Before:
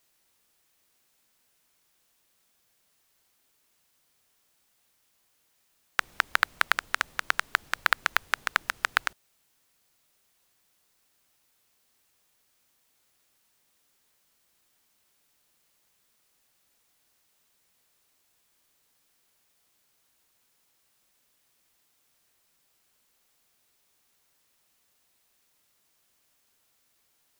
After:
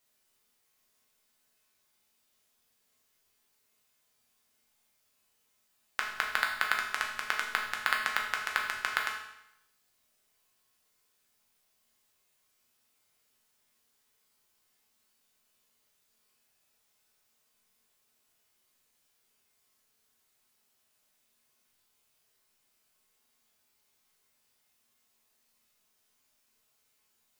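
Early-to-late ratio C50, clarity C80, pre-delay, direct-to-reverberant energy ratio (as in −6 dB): 5.0 dB, 7.5 dB, 5 ms, −1.0 dB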